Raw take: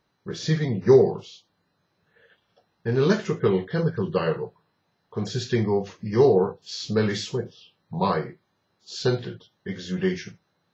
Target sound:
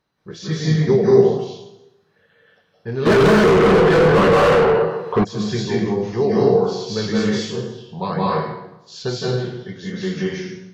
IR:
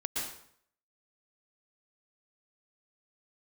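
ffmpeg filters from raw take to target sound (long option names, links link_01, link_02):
-filter_complex "[1:a]atrim=start_sample=2205,asetrate=30429,aresample=44100[link_01];[0:a][link_01]afir=irnorm=-1:irlink=0,asplit=3[link_02][link_03][link_04];[link_02]afade=type=out:start_time=3.05:duration=0.02[link_05];[link_03]asplit=2[link_06][link_07];[link_07]highpass=frequency=720:poles=1,volume=36dB,asoftclip=type=tanh:threshold=-2.5dB[link_08];[link_06][link_08]amix=inputs=2:normalize=0,lowpass=frequency=1200:poles=1,volume=-6dB,afade=type=in:start_time=3.05:duration=0.02,afade=type=out:start_time=5.23:duration=0.02[link_09];[link_04]afade=type=in:start_time=5.23:duration=0.02[link_10];[link_05][link_09][link_10]amix=inputs=3:normalize=0,volume=-2.5dB"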